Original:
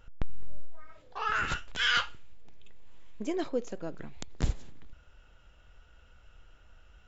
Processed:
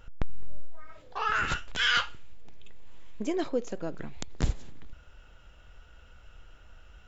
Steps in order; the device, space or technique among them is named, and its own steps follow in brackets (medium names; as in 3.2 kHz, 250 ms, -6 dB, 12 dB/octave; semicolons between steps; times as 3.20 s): parallel compression (in parallel at -3.5 dB: compression, threshold -35 dBFS, peak gain reduction 13.5 dB)